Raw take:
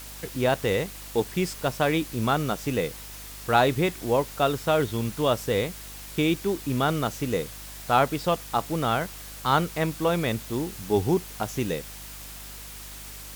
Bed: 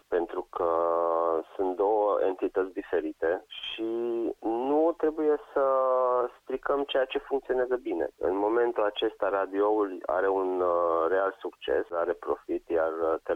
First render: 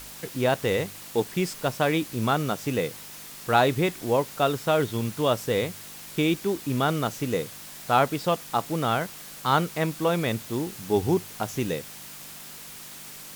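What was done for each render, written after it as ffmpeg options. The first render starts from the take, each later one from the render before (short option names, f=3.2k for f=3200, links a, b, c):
-af "bandreject=f=50:t=h:w=4,bandreject=f=100:t=h:w=4"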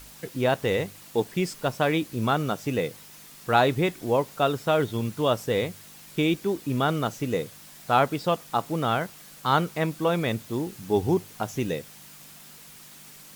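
-af "afftdn=nr=6:nf=-42"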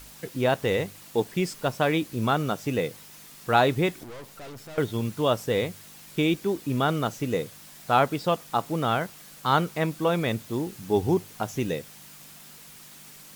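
-filter_complex "[0:a]asettb=1/sr,asplit=3[a][b][c];[a]atrim=end=4.034[d];[b]atrim=start=4.03:end=4.78,asetpts=PTS-STARTPTS,afade=t=in:d=0.004:c=qsin,afade=t=out:st=0.746:d=0.004:c=qsin,aeval=exprs='(tanh(100*val(0)+0.55)-tanh(0.55))/100':c=same[e];[c]atrim=start=4.776[f];[d][e]acrossfade=d=0.004:c1=hsin:c2=qsin[g];[g][f]acrossfade=d=0.004:c1=qsin:c2=hsin"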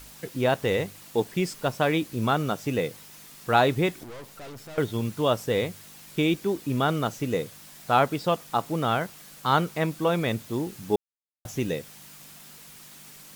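-filter_complex "[0:a]asplit=3[a][b][c];[a]atrim=end=10.96,asetpts=PTS-STARTPTS,afade=t=out:st=10.956:d=0.004:c=hsin[d];[b]atrim=start=10.96:end=11.45,asetpts=PTS-STARTPTS,volume=0[e];[c]atrim=start=11.45,asetpts=PTS-STARTPTS,afade=t=in:d=0.004:c=hsin[f];[d][e][f]concat=n=3:v=0:a=1"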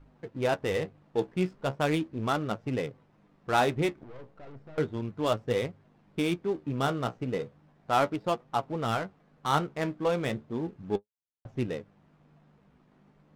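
-af "flanger=delay=7:depth=9.5:regen=50:speed=0.35:shape=triangular,adynamicsmooth=sensitivity=7.5:basefreq=740"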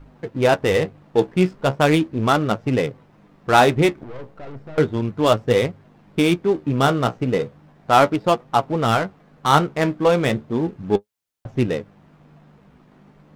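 -af "volume=11dB"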